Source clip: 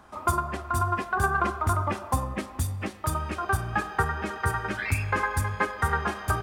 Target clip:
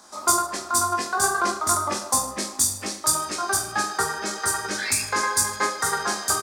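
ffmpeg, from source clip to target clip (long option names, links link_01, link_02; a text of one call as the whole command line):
ffmpeg -i in.wav -filter_complex "[0:a]acrossover=split=210 7600:gain=0.112 1 0.141[link_01][link_02][link_03];[link_01][link_02][link_03]amix=inputs=3:normalize=0,aexciter=amount=8.4:drive=7.6:freq=4200,aecho=1:1:20|44|72.8|107.4|148.8:0.631|0.398|0.251|0.158|0.1" out.wav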